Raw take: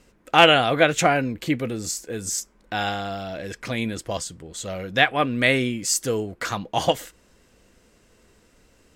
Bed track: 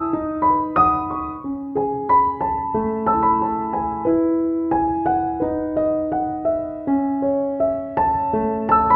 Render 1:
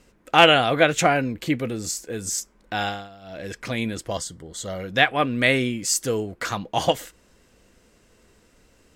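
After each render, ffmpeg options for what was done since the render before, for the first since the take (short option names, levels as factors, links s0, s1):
-filter_complex "[0:a]asettb=1/sr,asplit=3[s0][s1][s2];[s0]atrim=end=4.124[s3];[s1]atrim=start=4.12:end=4.81,asetpts=PTS-STARTPTS,afade=t=in:d=0.004:c=qsin,afade=t=out:st=0.686:d=0.004:c=qsin,asuperstop=centerf=2500:order=8:qfactor=4.5[s4];[s2]atrim=start=4.806[s5];[s3][s4]acrossfade=d=0.004:c1=hsin:c2=qsin[s6];[s6][s5]acrossfade=d=0.004:c1=qsin:c2=hsin,asplit=3[s7][s8][s9];[s7]atrim=end=3.09,asetpts=PTS-STARTPTS,afade=t=out:st=2.84:d=0.25:silence=0.177828[s10];[s8]atrim=start=3.09:end=3.21,asetpts=PTS-STARTPTS,volume=0.178[s11];[s9]atrim=start=3.21,asetpts=PTS-STARTPTS,afade=t=in:d=0.25:silence=0.177828[s12];[s10][s11][s12]concat=n=3:v=0:a=1"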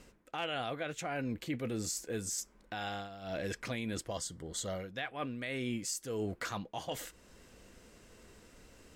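-af "areverse,acompressor=threshold=0.0355:ratio=12,areverse,alimiter=level_in=1.41:limit=0.0631:level=0:latency=1:release=471,volume=0.708"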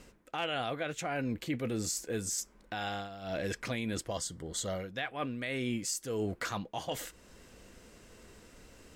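-af "volume=1.33"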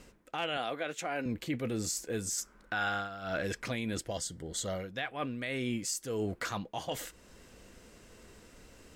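-filter_complex "[0:a]asettb=1/sr,asplit=3[s0][s1][s2];[s0]atrim=end=0.574[s3];[s1]atrim=start=0.57:end=1.26,asetpts=PTS-STARTPTS,afade=t=in:d=0.004:c=qsin,afade=t=out:st=0.686:d=0.004:c=qsin,highpass=240[s4];[s2]atrim=start=1.256[s5];[s3][s4]acrossfade=d=0.004:c1=hsin:c2=qsin[s6];[s6][s5]acrossfade=d=0.004:c1=qsin:c2=hsin,asettb=1/sr,asplit=3[s7][s8][s9];[s7]atrim=end=2.374[s10];[s8]atrim=start=2.37:end=3.43,asetpts=PTS-STARTPTS,afade=t=in:d=0.004:c=qsin,afade=t=out:st=1.056:d=0.004:c=qsin,equalizer=f=1400:w=2.7:g=11[s11];[s9]atrim=start=3.426[s12];[s10][s11]acrossfade=d=0.004:c1=hsin:c2=qsin[s13];[s13][s12]acrossfade=d=0.004:c1=qsin:c2=hsin,asettb=1/sr,asplit=3[s14][s15][s16];[s14]atrim=end=3.994[s17];[s15]atrim=start=3.99:end=4.62,asetpts=PTS-STARTPTS,afade=t=in:d=0.004:c=qsin,afade=t=out:st=0.626:d=0.004:c=qsin,equalizer=f=1100:t=o:w=0.24:g=-12[s18];[s16]atrim=start=4.616[s19];[s17][s18]acrossfade=d=0.004:c1=hsin:c2=qsin[s20];[s20][s19]acrossfade=d=0.004:c1=qsin:c2=hsin"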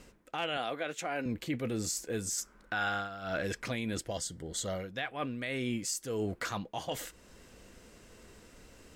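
-af anull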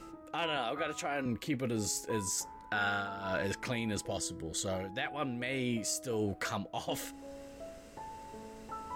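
-filter_complex "[1:a]volume=0.0398[s0];[0:a][s0]amix=inputs=2:normalize=0"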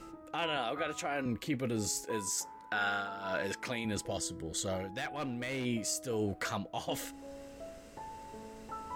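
-filter_complex "[0:a]asettb=1/sr,asplit=3[s0][s1][s2];[s0]atrim=end=2.044[s3];[s1]atrim=start=2.04:end=3.85,asetpts=PTS-STARTPTS,afade=t=in:d=0.004:c=qsin,afade=t=out:st=1.806:d=0.004:c=qsin,highpass=f=240:p=1[s4];[s2]atrim=start=3.846[s5];[s3][s4]acrossfade=d=0.004:c1=hsin:c2=qsin[s6];[s6][s5]acrossfade=d=0.004:c1=qsin:c2=hsin,asplit=3[s7][s8][s9];[s7]afade=t=out:st=4.88:d=0.02[s10];[s8]asoftclip=type=hard:threshold=0.0237,afade=t=in:st=4.88:d=0.02,afade=t=out:st=5.64:d=0.02[s11];[s9]afade=t=in:st=5.64:d=0.02[s12];[s10][s11][s12]amix=inputs=3:normalize=0"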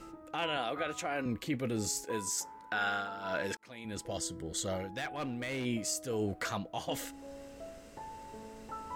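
-filter_complex "[0:a]asplit=2[s0][s1];[s0]atrim=end=3.57,asetpts=PTS-STARTPTS,afade=t=out:st=3.566:d=0.004:c=hsin[s2];[s1]atrim=start=3.57,asetpts=PTS-STARTPTS,afade=t=in:d=0.65[s3];[s2][s3]concat=n=2:v=0:a=1"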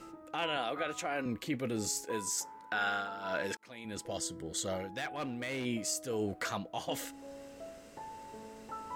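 -af "lowshelf=f=79:g=-10.5"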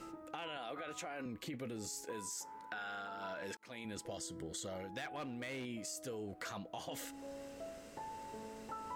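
-af "alimiter=level_in=1.78:limit=0.0631:level=0:latency=1:release=11,volume=0.562,acompressor=threshold=0.00891:ratio=6"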